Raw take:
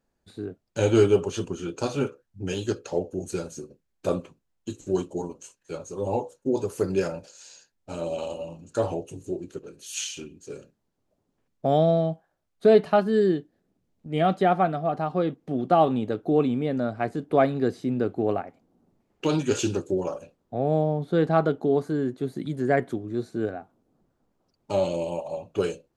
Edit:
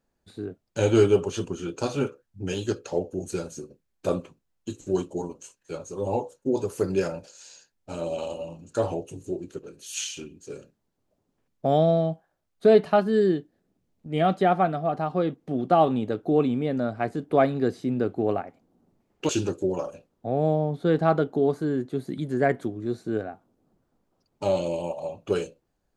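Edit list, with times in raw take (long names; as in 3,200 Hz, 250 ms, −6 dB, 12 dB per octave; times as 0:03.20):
0:19.29–0:19.57: remove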